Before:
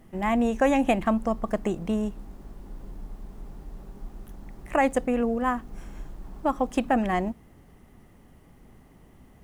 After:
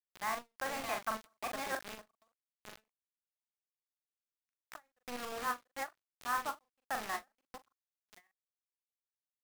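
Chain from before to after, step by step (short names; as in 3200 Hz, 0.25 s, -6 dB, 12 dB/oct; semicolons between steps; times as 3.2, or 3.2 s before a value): reverse delay 0.591 s, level -3.5 dB; reverse; compressor 20:1, threshold -30 dBFS, peak gain reduction 15 dB; reverse; band-pass sweep 1400 Hz -> 3200 Hz, 7.39–9.07; bit-crush 8-bit; doubler 41 ms -5 dB; ending taper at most 370 dB/s; gain +7 dB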